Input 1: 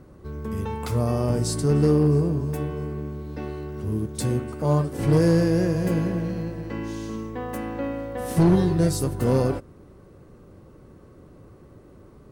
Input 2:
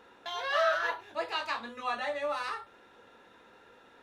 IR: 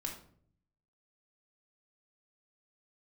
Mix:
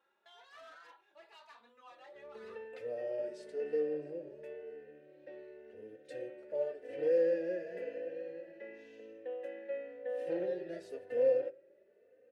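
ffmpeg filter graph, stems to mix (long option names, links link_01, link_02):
-filter_complex "[0:a]asplit=3[link_01][link_02][link_03];[link_01]bandpass=frequency=530:width_type=q:width=8,volume=0dB[link_04];[link_02]bandpass=frequency=1840:width_type=q:width=8,volume=-6dB[link_05];[link_03]bandpass=frequency=2480:width_type=q:width=8,volume=-9dB[link_06];[link_04][link_05][link_06]amix=inputs=3:normalize=0,adelay=1900,volume=0dB,asplit=2[link_07][link_08];[link_08]volume=-12dB[link_09];[1:a]asoftclip=type=tanh:threshold=-32dB,volume=-16.5dB[link_10];[2:a]atrim=start_sample=2205[link_11];[link_09][link_11]afir=irnorm=-1:irlink=0[link_12];[link_07][link_10][link_12]amix=inputs=3:normalize=0,bass=frequency=250:gain=-14,treble=frequency=4000:gain=-4,asplit=2[link_13][link_14];[link_14]adelay=3.2,afreqshift=0.95[link_15];[link_13][link_15]amix=inputs=2:normalize=1"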